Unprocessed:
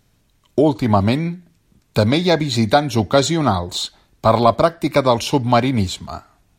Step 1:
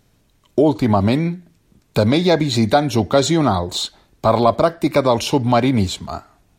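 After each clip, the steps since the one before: bell 420 Hz +3.5 dB 2 oct; in parallel at +3 dB: limiter -8.5 dBFS, peak gain reduction 9.5 dB; on the sum: gain -7 dB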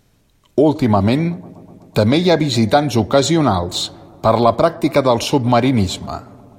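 dark delay 0.124 s, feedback 77%, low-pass 1100 Hz, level -23 dB; gain +1.5 dB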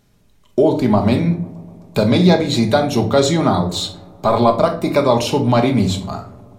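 shoebox room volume 470 m³, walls furnished, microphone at 1.3 m; gain -2.5 dB

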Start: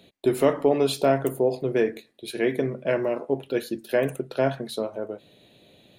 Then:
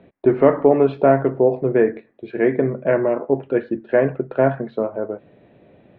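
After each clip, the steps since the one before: LPF 1900 Hz 24 dB/oct; gain +6.5 dB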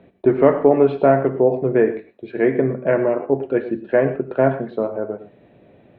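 non-linear reverb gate 0.14 s rising, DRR 11.5 dB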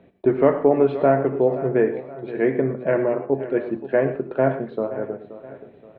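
feedback echo 0.525 s, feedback 44%, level -15 dB; gain -3 dB

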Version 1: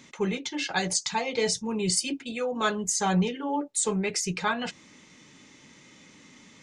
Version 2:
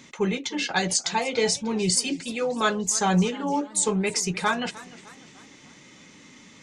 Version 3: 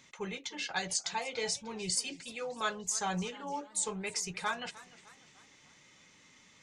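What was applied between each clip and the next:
warbling echo 0.301 s, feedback 50%, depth 142 cents, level -19 dB; gain +3 dB
bell 260 Hz -9.5 dB 1.5 oct; gain -9 dB

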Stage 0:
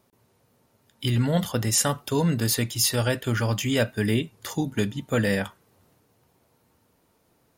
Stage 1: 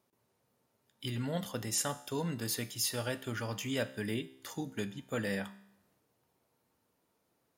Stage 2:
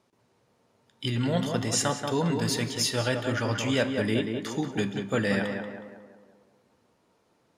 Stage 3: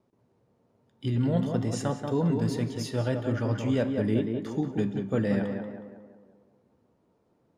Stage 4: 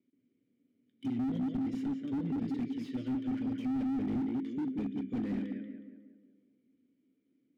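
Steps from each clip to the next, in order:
low shelf 100 Hz -10.5 dB; resonator 66 Hz, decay 0.77 s, harmonics all, mix 50%; gain -5.5 dB
LPF 7200 Hz 12 dB/oct; tape echo 0.184 s, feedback 55%, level -3.5 dB, low-pass 1800 Hz; gain +8.5 dB
tilt shelf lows +8 dB; wow and flutter 21 cents; gain -5.5 dB
vowel filter i; slew limiter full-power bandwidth 4.5 Hz; gain +5 dB

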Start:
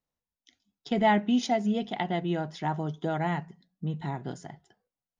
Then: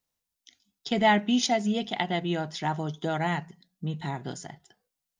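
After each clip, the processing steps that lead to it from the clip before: high shelf 2300 Hz +10.5 dB; ending taper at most 460 dB/s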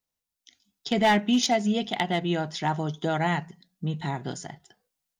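AGC gain up to 6 dB; hard clip -12 dBFS, distortion -17 dB; gain -3.5 dB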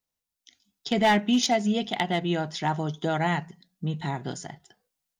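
nothing audible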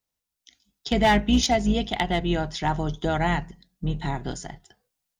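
octaver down 2 oct, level -4 dB; gain +1.5 dB

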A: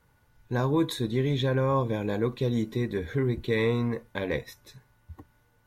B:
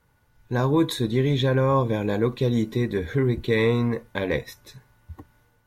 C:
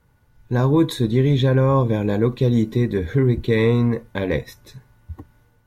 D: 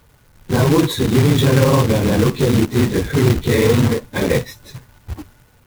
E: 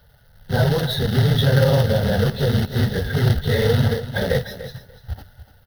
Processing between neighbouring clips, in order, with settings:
AGC gain up to 4.5 dB
low shelf 400 Hz +6.5 dB
phase scrambler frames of 50 ms; in parallel at +1 dB: limiter -15 dBFS, peak gain reduction 10.5 dB; on the sum: companded quantiser 4-bit; gain -1 dB
tracing distortion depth 0.025 ms; fixed phaser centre 1600 Hz, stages 8; feedback echo 0.293 s, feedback 16%, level -13.5 dB

